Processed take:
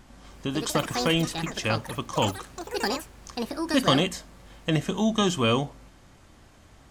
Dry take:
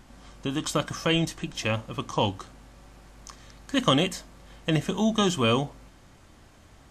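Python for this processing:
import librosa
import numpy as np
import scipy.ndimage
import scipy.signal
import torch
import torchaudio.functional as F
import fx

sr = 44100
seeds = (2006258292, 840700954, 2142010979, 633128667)

y = fx.echo_pitch(x, sr, ms=247, semitones=7, count=3, db_per_echo=-6.0)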